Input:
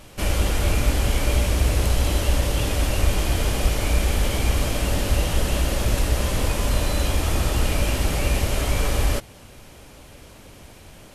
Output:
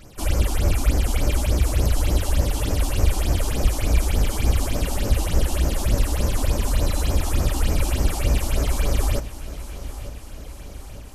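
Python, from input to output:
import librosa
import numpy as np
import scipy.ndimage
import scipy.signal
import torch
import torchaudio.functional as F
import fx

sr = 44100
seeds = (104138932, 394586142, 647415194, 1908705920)

p1 = fx.phaser_stages(x, sr, stages=6, low_hz=120.0, high_hz=3500.0, hz=3.4, feedback_pct=35)
y = p1 + fx.echo_feedback(p1, sr, ms=902, feedback_pct=60, wet_db=-14.5, dry=0)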